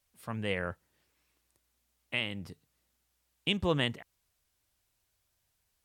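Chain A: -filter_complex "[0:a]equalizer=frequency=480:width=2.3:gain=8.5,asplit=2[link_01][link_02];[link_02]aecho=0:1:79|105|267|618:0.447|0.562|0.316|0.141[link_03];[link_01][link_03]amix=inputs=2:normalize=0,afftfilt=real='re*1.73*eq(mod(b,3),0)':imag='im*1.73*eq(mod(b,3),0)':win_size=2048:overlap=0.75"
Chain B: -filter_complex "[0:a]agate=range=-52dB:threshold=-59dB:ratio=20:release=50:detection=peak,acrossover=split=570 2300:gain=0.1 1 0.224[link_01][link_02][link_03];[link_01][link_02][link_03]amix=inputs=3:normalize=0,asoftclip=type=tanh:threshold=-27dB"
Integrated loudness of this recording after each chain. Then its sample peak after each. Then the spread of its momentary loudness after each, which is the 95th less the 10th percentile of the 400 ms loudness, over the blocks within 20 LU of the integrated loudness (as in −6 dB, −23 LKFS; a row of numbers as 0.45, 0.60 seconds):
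−33.0, −42.0 LKFS; −15.0, −27.0 dBFS; 23, 18 LU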